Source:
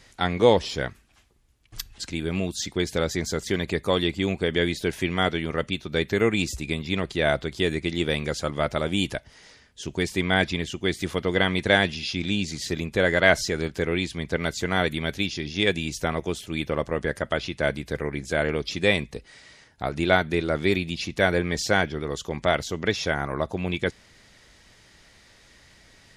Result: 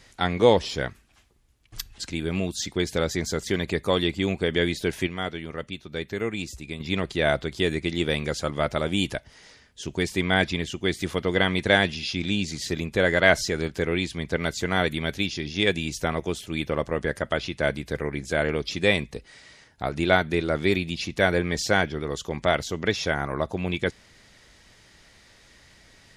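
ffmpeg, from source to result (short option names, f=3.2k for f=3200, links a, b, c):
-filter_complex "[0:a]asplit=3[a][b][c];[a]atrim=end=5.072[d];[b]atrim=start=5.068:end=6.802,asetpts=PTS-STARTPTS,volume=-7dB[e];[c]atrim=start=6.798[f];[d][e]acrossfade=d=0.004:c1=hsin:c2=hsin[g];[g][f]acrossfade=d=0.004:c1=hsin:c2=hsin"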